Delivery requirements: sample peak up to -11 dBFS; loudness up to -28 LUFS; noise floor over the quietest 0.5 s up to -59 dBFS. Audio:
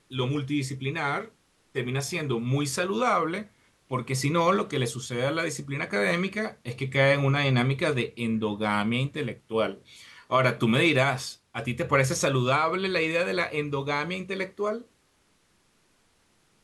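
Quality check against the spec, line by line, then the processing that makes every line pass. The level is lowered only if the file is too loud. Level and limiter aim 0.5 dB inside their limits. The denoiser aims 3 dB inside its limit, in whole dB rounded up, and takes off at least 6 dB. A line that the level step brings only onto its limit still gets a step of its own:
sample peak -8.0 dBFS: fail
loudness -26.5 LUFS: fail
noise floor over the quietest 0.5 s -66 dBFS: OK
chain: gain -2 dB; limiter -11.5 dBFS

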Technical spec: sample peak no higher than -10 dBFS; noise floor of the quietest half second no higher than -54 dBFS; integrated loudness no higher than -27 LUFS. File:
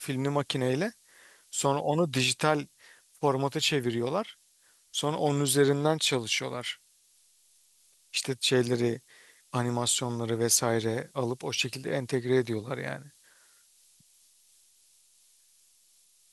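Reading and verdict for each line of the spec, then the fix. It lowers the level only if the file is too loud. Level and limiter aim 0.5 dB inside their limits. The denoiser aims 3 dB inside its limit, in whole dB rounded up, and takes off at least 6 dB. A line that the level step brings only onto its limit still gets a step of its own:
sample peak -9.0 dBFS: fail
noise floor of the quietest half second -64 dBFS: OK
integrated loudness -28.5 LUFS: OK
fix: limiter -10.5 dBFS

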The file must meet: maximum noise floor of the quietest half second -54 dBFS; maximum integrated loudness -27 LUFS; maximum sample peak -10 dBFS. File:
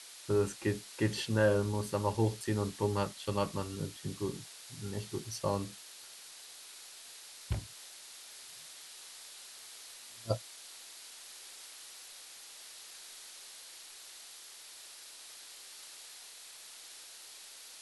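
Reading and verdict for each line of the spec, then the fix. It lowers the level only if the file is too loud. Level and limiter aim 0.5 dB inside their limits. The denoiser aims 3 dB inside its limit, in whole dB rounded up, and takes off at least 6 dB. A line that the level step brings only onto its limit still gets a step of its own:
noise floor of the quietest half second -51 dBFS: fail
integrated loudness -38.5 LUFS: OK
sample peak -15.5 dBFS: OK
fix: denoiser 6 dB, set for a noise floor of -51 dBFS

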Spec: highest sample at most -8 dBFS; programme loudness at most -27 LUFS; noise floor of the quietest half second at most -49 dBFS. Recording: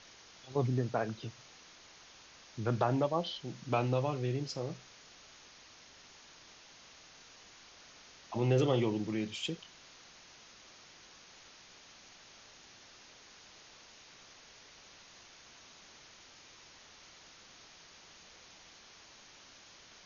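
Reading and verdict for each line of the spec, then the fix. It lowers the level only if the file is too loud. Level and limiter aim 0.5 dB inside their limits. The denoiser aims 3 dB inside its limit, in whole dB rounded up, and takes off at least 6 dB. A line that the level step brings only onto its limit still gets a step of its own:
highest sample -15.5 dBFS: OK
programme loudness -34.0 LUFS: OK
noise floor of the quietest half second -57 dBFS: OK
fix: none

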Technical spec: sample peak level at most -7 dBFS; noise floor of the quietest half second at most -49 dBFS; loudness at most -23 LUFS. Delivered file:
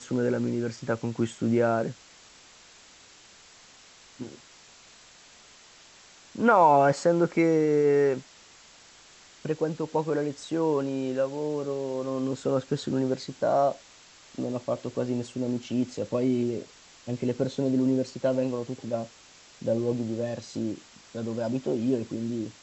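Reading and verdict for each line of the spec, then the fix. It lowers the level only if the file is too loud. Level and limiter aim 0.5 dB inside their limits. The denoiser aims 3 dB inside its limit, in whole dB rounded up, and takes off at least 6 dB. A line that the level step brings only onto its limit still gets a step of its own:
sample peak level -8.5 dBFS: OK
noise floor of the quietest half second -53 dBFS: OK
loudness -27.5 LUFS: OK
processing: none

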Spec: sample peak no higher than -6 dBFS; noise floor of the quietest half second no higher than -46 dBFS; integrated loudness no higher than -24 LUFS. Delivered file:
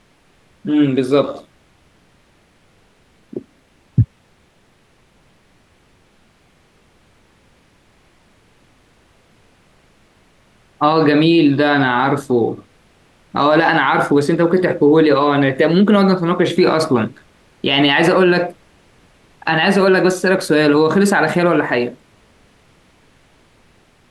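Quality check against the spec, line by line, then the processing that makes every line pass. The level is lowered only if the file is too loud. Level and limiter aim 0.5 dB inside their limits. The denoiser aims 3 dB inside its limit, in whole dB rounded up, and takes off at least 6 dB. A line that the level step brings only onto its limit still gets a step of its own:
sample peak -3.5 dBFS: fail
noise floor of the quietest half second -55 dBFS: OK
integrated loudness -14.5 LUFS: fail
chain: gain -10 dB

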